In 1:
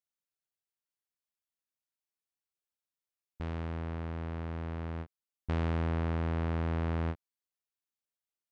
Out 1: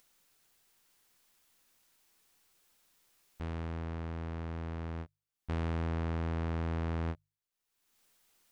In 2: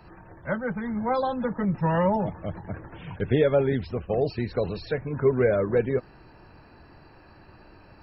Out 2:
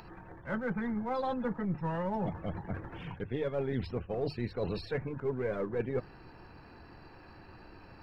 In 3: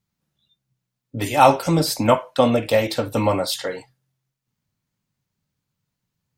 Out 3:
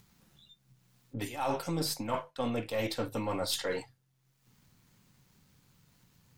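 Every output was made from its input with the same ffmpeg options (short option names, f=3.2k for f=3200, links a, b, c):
-af "aeval=exprs='if(lt(val(0),0),0.708*val(0),val(0))':c=same,bandreject=f=50:t=h:w=6,bandreject=f=100:t=h:w=6,bandreject=f=150:t=h:w=6,areverse,acompressor=threshold=-29dB:ratio=12,areverse,bandreject=f=610:w=12,acompressor=mode=upward:threshold=-50dB:ratio=2.5"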